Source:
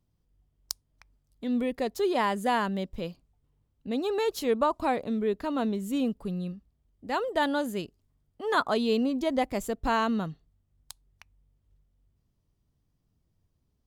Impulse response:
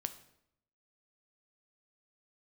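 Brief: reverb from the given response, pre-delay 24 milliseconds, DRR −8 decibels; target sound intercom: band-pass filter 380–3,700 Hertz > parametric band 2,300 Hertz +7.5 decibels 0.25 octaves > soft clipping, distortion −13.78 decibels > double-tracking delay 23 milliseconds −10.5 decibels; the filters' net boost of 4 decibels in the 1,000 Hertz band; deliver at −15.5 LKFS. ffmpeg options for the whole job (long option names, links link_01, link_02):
-filter_complex "[0:a]equalizer=frequency=1000:width_type=o:gain=5,asplit=2[link_01][link_02];[1:a]atrim=start_sample=2205,adelay=24[link_03];[link_02][link_03]afir=irnorm=-1:irlink=0,volume=9dB[link_04];[link_01][link_04]amix=inputs=2:normalize=0,highpass=380,lowpass=3700,equalizer=frequency=2300:width_type=o:width=0.25:gain=7.5,asoftclip=threshold=-10dB,asplit=2[link_05][link_06];[link_06]adelay=23,volume=-10.5dB[link_07];[link_05][link_07]amix=inputs=2:normalize=0,volume=6dB"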